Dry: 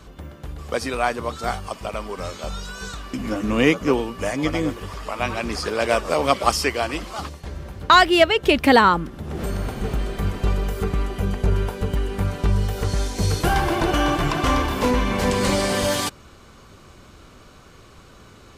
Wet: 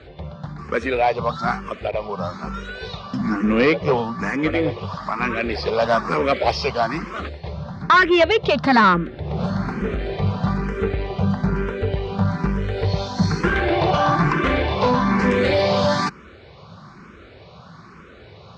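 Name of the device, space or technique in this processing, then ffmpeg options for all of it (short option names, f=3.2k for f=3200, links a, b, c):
barber-pole phaser into a guitar amplifier: -filter_complex "[0:a]asplit=2[a][b];[b]afreqshift=1.1[c];[a][c]amix=inputs=2:normalize=1,asoftclip=type=tanh:threshold=-17dB,highpass=87,equalizer=f=170:t=q:w=4:g=6,equalizer=f=290:t=q:w=4:g=-6,equalizer=f=3k:t=q:w=4:g=-7,lowpass=f=4.4k:w=0.5412,lowpass=f=4.4k:w=1.3066,asettb=1/sr,asplit=3[d][e][f];[d]atrim=end=1.914[g];[e]atrim=start=1.91:end=2.54,asetpts=PTS-STARTPTS,afade=t=in:d=0.004:c=qsin,afade=t=out:st=0.626:d=0.004:c=qsin,adynamicequalizer=threshold=0.00501:dfrequency=1600:dqfactor=0.7:tfrequency=1600:tqfactor=0.7:attack=5:release=100:ratio=0.375:range=2.5:mode=cutabove:tftype=highshelf[h];[f]atrim=start=2.536[i];[g][h]acrossfade=d=0.004:c1=hsin:c2=qsin[j];[j][i]acrossfade=d=0.004:c1=qsin:c2=hsin,volume=8dB"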